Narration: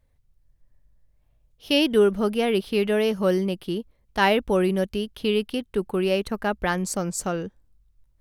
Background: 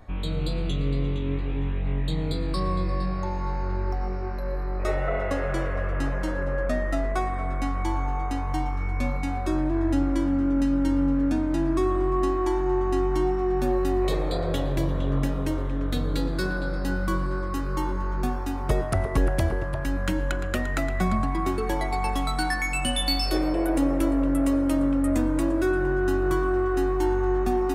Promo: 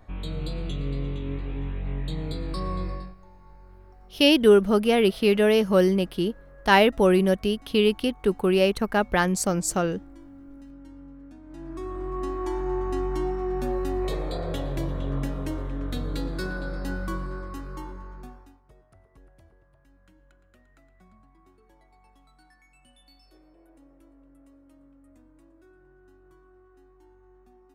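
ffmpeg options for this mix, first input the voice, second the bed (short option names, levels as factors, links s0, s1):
-filter_complex "[0:a]adelay=2500,volume=1.33[s0];[1:a]volume=5.62,afade=t=out:st=2.85:d=0.3:silence=0.112202,afade=t=in:st=11.42:d=1.2:silence=0.112202,afade=t=out:st=16.9:d=1.71:silence=0.0354813[s1];[s0][s1]amix=inputs=2:normalize=0"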